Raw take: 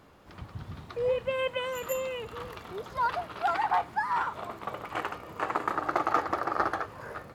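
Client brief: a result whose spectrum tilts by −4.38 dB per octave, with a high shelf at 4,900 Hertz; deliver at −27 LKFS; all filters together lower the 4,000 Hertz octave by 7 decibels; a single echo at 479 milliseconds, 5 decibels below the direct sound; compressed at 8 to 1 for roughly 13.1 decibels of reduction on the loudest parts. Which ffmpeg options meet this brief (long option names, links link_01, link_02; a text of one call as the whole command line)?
ffmpeg -i in.wav -af "equalizer=frequency=4000:width_type=o:gain=-8,highshelf=frequency=4900:gain=-6,acompressor=threshold=-38dB:ratio=8,aecho=1:1:479:0.562,volume=14.5dB" out.wav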